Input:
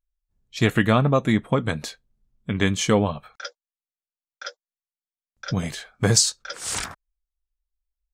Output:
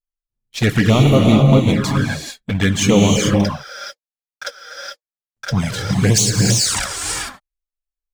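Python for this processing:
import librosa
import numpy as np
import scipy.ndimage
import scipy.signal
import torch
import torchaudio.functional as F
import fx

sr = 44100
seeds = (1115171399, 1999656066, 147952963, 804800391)

y = fx.leveller(x, sr, passes=3)
y = fx.rev_gated(y, sr, seeds[0], gate_ms=460, shape='rising', drr_db=0.0)
y = fx.env_flanger(y, sr, rest_ms=8.8, full_db=-7.0)
y = F.gain(torch.from_numpy(y), -1.5).numpy()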